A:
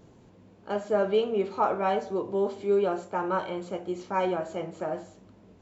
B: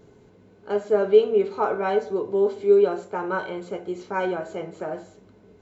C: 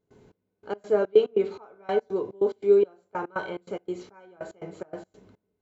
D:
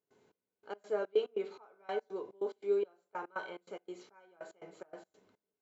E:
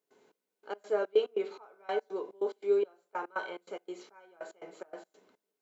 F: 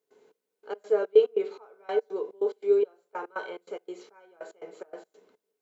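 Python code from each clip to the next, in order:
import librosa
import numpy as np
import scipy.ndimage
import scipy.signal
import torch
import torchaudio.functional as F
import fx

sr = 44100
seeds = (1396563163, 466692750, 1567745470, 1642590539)

y1 = fx.small_body(x, sr, hz=(420.0, 1500.0, 2100.0, 4000.0), ring_ms=85, db=12)
y2 = fx.step_gate(y1, sr, bpm=143, pattern='.xx...x.xx.x', floor_db=-24.0, edge_ms=4.5)
y2 = F.gain(torch.from_numpy(y2), -2.0).numpy()
y3 = fx.highpass(y2, sr, hz=630.0, slope=6)
y3 = F.gain(torch.from_numpy(y3), -7.0).numpy()
y4 = scipy.signal.sosfilt(scipy.signal.butter(2, 250.0, 'highpass', fs=sr, output='sos'), y3)
y4 = F.gain(torch.from_numpy(y4), 4.5).numpy()
y5 = fx.peak_eq(y4, sr, hz=450.0, db=9.0, octaves=0.33)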